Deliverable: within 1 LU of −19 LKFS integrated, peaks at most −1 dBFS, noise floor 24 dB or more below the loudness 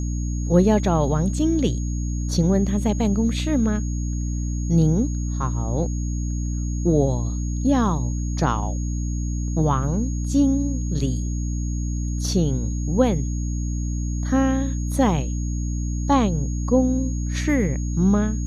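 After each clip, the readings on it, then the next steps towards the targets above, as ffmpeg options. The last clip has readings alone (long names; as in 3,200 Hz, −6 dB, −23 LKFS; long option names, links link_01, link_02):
mains hum 60 Hz; hum harmonics up to 300 Hz; level of the hum −22 dBFS; interfering tone 6,600 Hz; level of the tone −39 dBFS; integrated loudness −23.0 LKFS; sample peak −4.0 dBFS; target loudness −19.0 LKFS
→ -af "bandreject=frequency=60:width_type=h:width=4,bandreject=frequency=120:width_type=h:width=4,bandreject=frequency=180:width_type=h:width=4,bandreject=frequency=240:width_type=h:width=4,bandreject=frequency=300:width_type=h:width=4"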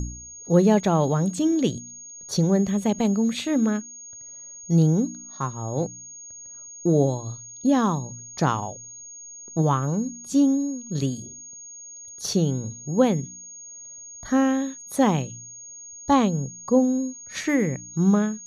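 mains hum none found; interfering tone 6,600 Hz; level of the tone −39 dBFS
→ -af "bandreject=frequency=6600:width=30"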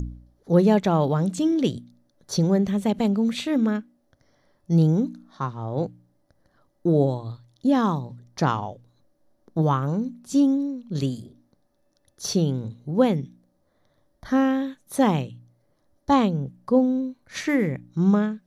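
interfering tone none found; integrated loudness −23.5 LKFS; sample peak −6.0 dBFS; target loudness −19.0 LKFS
→ -af "volume=4.5dB"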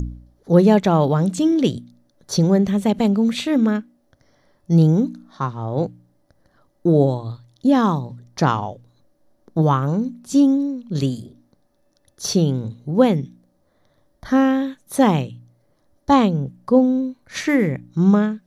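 integrated loudness −19.0 LKFS; sample peak −1.5 dBFS; background noise floor −64 dBFS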